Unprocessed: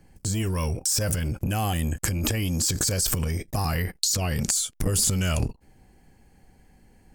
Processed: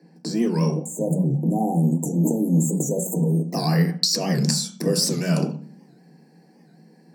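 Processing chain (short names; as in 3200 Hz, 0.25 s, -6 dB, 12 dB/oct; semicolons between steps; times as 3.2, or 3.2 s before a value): 0.75–3.48 spectral delete 980–6200 Hz; high shelf 7200 Hz -4 dB, from 1.83 s +5.5 dB; Chebyshev high-pass 150 Hz, order 8; reverb RT60 0.45 s, pre-delay 3 ms, DRR 4 dB; record warp 78 rpm, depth 160 cents; gain -5.5 dB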